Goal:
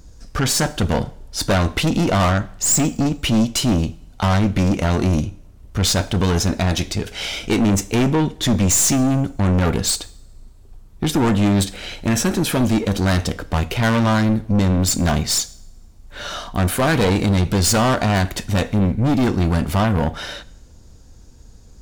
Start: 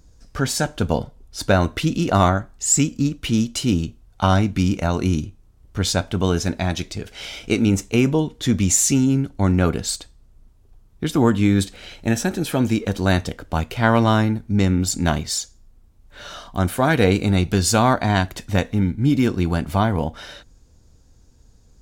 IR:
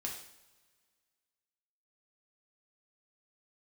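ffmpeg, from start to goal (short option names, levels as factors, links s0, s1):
-filter_complex "[0:a]aeval=exprs='(tanh(12.6*val(0)+0.35)-tanh(0.35))/12.6':c=same,asplit=2[s0][s1];[1:a]atrim=start_sample=2205[s2];[s1][s2]afir=irnorm=-1:irlink=0,volume=0.211[s3];[s0][s3]amix=inputs=2:normalize=0,volume=2.37"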